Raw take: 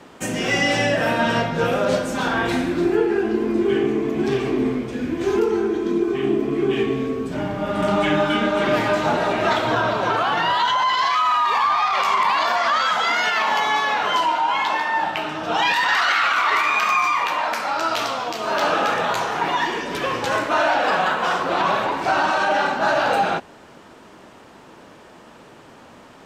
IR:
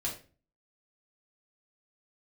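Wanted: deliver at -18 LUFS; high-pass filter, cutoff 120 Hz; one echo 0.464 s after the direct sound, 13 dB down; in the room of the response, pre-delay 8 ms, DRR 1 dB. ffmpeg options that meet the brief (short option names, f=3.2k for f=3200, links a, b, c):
-filter_complex "[0:a]highpass=120,aecho=1:1:464:0.224,asplit=2[a][b];[1:a]atrim=start_sample=2205,adelay=8[c];[b][c]afir=irnorm=-1:irlink=0,volume=-4dB[d];[a][d]amix=inputs=2:normalize=0,volume=-1dB"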